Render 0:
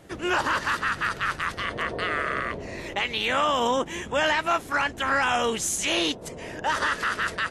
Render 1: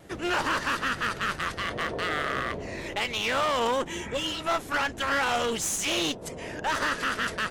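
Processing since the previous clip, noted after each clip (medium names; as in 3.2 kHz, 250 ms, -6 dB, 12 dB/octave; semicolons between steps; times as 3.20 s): spectral replace 3.95–4.39 s, 570–2600 Hz both; one-sided clip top -29 dBFS; vibrato 2.4 Hz 31 cents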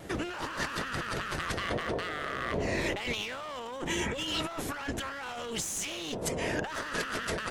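compressor with a negative ratio -35 dBFS, ratio -1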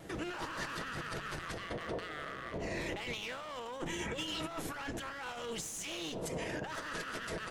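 peak limiter -28 dBFS, peak gain reduction 10 dB; simulated room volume 2400 m³, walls furnished, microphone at 0.65 m; upward expansion 1.5:1, over -42 dBFS; trim -1.5 dB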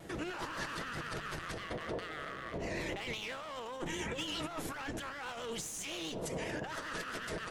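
vibrato 7.6 Hz 61 cents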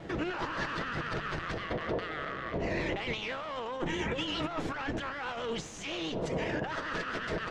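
distance through air 150 m; trim +6.5 dB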